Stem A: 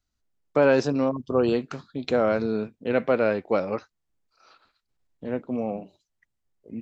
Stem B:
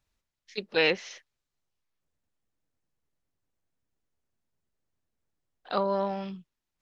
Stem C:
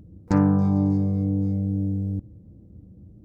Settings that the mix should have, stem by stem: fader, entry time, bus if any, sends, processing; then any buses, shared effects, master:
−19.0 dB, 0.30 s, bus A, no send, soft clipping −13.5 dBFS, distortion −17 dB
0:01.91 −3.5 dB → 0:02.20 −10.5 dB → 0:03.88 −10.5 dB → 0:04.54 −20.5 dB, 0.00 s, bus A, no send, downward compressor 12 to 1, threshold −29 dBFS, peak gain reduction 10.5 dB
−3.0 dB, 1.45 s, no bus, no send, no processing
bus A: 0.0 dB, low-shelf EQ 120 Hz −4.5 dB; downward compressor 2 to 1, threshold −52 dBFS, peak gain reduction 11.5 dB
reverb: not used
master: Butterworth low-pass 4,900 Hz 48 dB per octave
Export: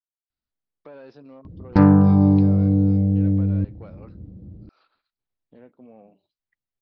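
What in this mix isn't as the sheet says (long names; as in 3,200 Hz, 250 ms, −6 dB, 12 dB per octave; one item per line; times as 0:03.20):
stem A −19.0 dB → −8.5 dB
stem B: muted
stem C −3.0 dB → +6.0 dB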